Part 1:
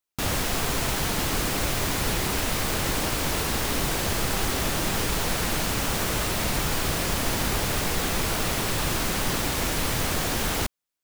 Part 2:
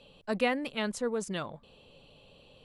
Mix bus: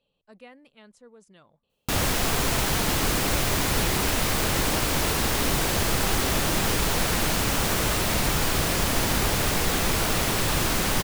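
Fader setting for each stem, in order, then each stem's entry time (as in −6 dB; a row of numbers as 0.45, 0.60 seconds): +2.0, −19.5 decibels; 1.70, 0.00 seconds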